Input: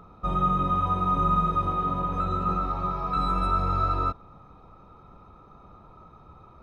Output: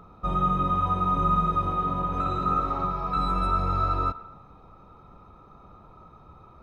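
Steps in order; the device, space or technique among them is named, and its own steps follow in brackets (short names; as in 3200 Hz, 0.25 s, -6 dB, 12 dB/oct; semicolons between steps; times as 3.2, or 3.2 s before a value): filtered reverb send (on a send at -15 dB: HPF 510 Hz + LPF 3400 Hz + reverb RT60 1.0 s, pre-delay 92 ms); 2.08–2.85 on the sum: flutter echo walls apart 9.9 m, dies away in 0.82 s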